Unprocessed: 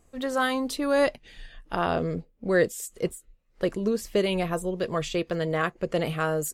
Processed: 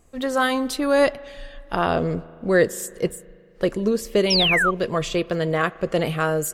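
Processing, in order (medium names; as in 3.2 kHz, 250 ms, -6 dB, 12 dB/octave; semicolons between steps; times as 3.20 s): spring tank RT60 2.3 s, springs 37 ms, chirp 55 ms, DRR 19.5 dB; painted sound fall, 4.30–4.71 s, 1.1–5.8 kHz -24 dBFS; trim +4.5 dB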